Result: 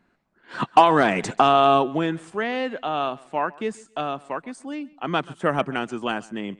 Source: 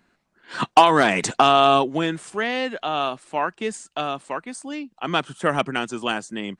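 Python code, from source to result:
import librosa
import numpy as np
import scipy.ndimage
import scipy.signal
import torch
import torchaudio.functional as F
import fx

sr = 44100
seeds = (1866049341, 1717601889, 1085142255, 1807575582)

y = fx.high_shelf(x, sr, hz=2900.0, db=-10.5)
y = fx.echo_feedback(y, sr, ms=135, feedback_pct=24, wet_db=-22.5)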